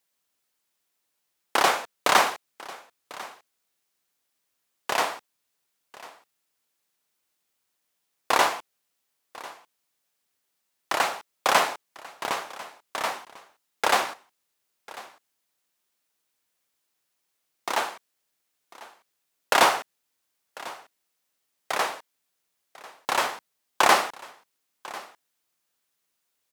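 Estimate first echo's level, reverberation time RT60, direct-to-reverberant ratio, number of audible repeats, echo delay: -19.5 dB, no reverb, no reverb, 1, 1046 ms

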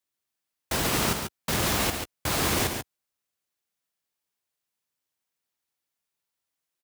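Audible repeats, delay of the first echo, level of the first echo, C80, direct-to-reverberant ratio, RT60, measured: 2, 67 ms, -12.5 dB, no reverb, no reverb, no reverb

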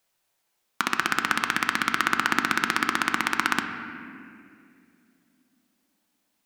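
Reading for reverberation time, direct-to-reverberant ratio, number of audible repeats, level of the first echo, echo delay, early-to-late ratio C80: 2.4 s, 5.0 dB, no echo, no echo, no echo, 8.0 dB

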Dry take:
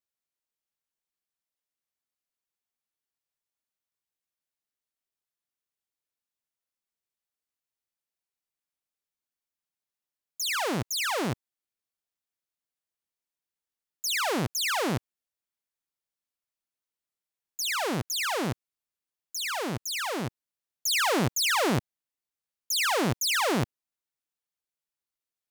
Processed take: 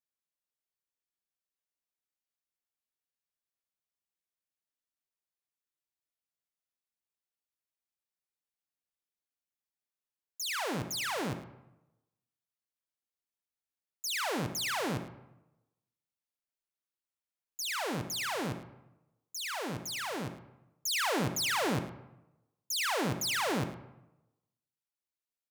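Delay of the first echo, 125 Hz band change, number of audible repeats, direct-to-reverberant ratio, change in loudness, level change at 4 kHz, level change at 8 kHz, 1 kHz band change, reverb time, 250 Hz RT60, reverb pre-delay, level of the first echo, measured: 107 ms, -5.5 dB, 1, 8.5 dB, -5.5 dB, -5.5 dB, -6.0 dB, -5.5 dB, 0.95 s, 1.0 s, 29 ms, -14.0 dB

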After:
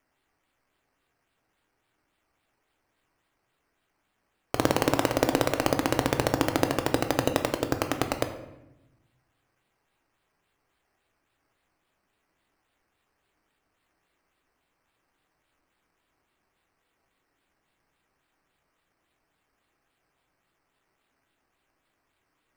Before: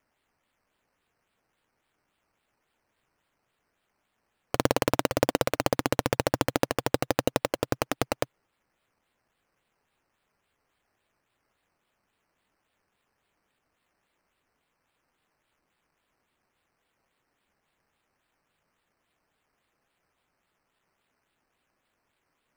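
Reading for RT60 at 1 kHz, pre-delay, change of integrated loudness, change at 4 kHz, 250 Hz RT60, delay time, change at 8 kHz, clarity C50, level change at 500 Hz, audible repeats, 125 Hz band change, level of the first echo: 0.90 s, 3 ms, +1.0 dB, +1.0 dB, 1.4 s, no echo, +0.5 dB, 9.5 dB, +0.5 dB, no echo, +1.5 dB, no echo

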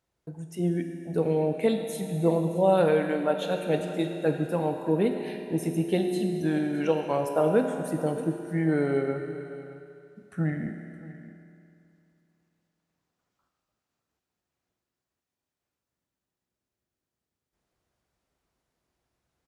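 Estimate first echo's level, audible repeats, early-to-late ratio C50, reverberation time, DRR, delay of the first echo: -17.0 dB, 1, 5.0 dB, 2.7 s, 3.5 dB, 619 ms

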